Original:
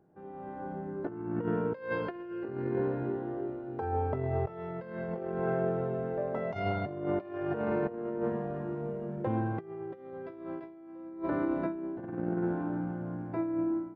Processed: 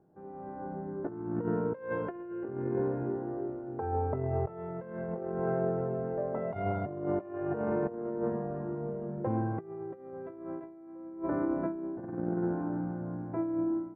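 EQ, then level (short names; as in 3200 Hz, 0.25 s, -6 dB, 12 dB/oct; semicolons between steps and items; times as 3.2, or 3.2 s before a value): LPF 1400 Hz 12 dB/oct; 0.0 dB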